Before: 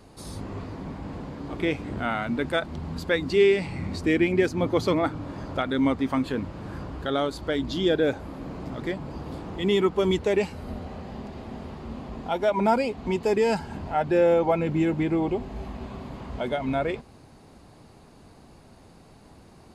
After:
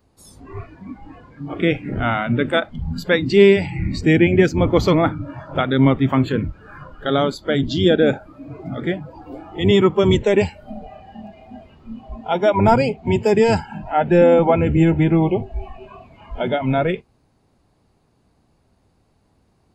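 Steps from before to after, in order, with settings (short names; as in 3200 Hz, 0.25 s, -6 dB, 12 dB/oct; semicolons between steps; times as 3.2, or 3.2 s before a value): octaver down 1 oct, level -1 dB; spectral noise reduction 19 dB; gain +7 dB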